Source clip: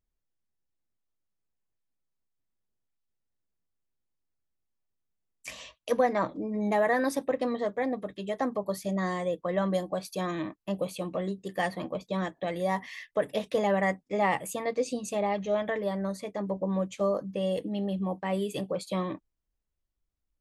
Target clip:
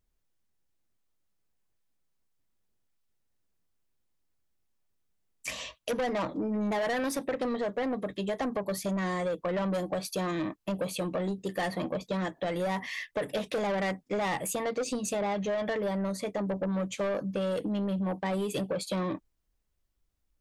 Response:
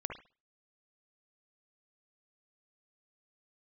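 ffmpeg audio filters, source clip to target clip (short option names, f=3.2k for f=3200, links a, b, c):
-af "asoftclip=type=tanh:threshold=-28.5dB,acompressor=threshold=-34dB:ratio=6,volume=6dB"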